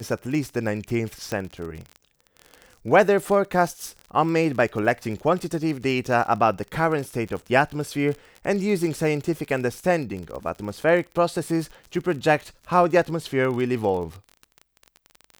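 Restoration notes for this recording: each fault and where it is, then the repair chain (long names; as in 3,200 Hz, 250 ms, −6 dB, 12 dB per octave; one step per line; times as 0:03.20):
surface crackle 29 per second −30 dBFS
0:01.32: click −14 dBFS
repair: click removal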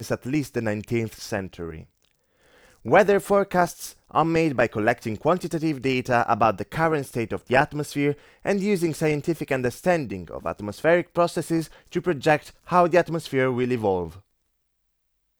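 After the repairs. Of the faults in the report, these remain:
none of them is left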